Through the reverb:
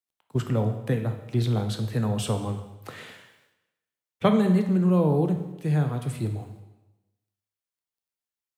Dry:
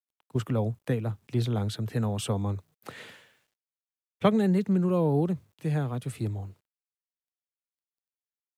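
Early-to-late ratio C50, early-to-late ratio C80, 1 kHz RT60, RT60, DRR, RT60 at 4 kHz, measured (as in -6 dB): 8.0 dB, 10.5 dB, 1.0 s, 1.0 s, 5.5 dB, 0.95 s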